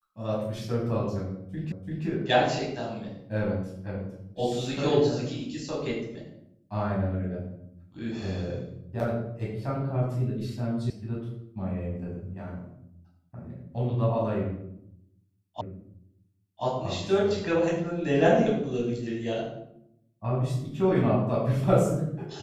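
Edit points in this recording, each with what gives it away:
1.72 repeat of the last 0.34 s
10.9 sound cut off
15.61 repeat of the last 1.03 s

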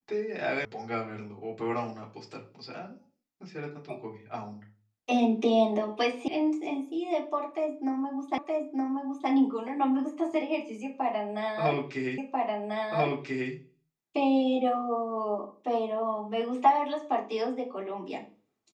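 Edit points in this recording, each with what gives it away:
0.65 sound cut off
6.28 sound cut off
8.38 repeat of the last 0.92 s
12.18 repeat of the last 1.34 s

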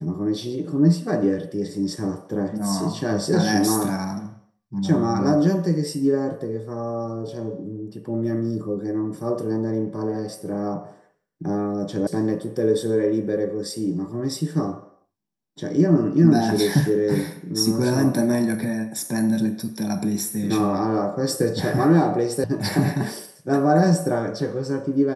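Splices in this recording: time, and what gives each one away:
12.07 sound cut off
22.44 sound cut off

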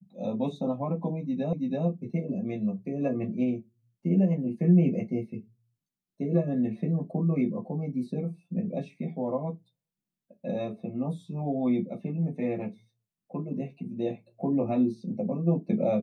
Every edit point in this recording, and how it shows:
1.53 repeat of the last 0.33 s

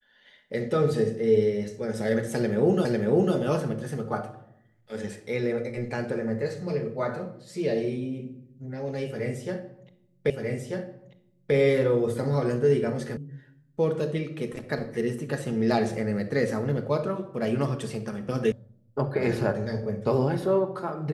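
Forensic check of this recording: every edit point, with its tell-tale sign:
2.85 repeat of the last 0.5 s
10.3 repeat of the last 1.24 s
13.17 sound cut off
18.52 sound cut off

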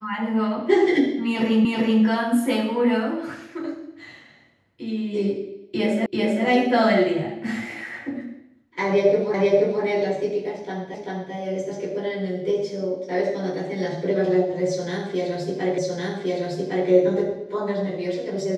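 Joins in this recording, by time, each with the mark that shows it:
1.65 repeat of the last 0.38 s
6.06 repeat of the last 0.39 s
9.34 repeat of the last 0.48 s
10.94 repeat of the last 0.39 s
15.78 repeat of the last 1.11 s

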